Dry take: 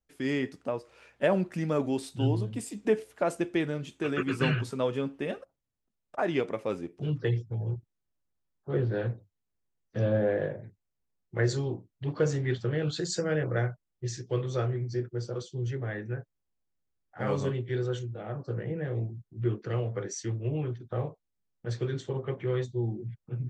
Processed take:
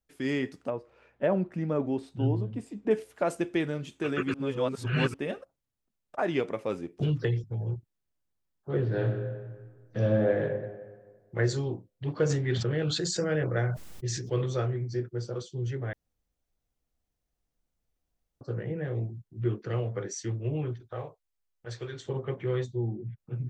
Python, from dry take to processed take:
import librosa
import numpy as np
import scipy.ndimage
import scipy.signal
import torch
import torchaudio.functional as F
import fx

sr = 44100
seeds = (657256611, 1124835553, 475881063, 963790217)

y = fx.lowpass(x, sr, hz=1100.0, slope=6, at=(0.7, 2.91))
y = fx.band_squash(y, sr, depth_pct=100, at=(6.99, 7.44))
y = fx.reverb_throw(y, sr, start_s=8.78, length_s=1.63, rt60_s=1.6, drr_db=4.0)
y = fx.sustainer(y, sr, db_per_s=43.0, at=(12.29, 14.53), fade=0.02)
y = fx.peak_eq(y, sr, hz=200.0, db=-14.5, octaves=1.6, at=(20.8, 22.06))
y = fx.air_absorb(y, sr, metres=270.0, at=(22.76, 23.18))
y = fx.edit(y, sr, fx.reverse_span(start_s=4.34, length_s=0.8),
    fx.room_tone_fill(start_s=15.93, length_s=2.48), tone=tone)